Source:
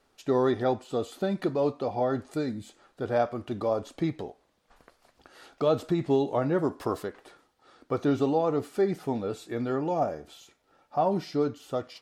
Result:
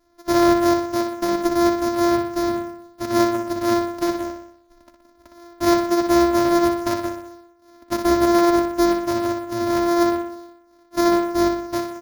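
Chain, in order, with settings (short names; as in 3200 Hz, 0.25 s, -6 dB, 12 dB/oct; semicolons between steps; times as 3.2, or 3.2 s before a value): sample sorter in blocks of 128 samples; comb 3.1 ms, depth 98%; on a send: feedback echo 61 ms, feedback 55%, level -7 dB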